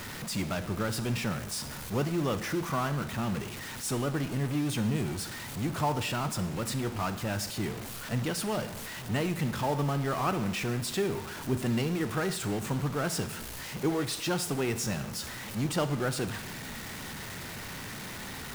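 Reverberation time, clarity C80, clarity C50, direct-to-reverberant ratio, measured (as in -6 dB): 0.90 s, 15.0 dB, 12.5 dB, 10.5 dB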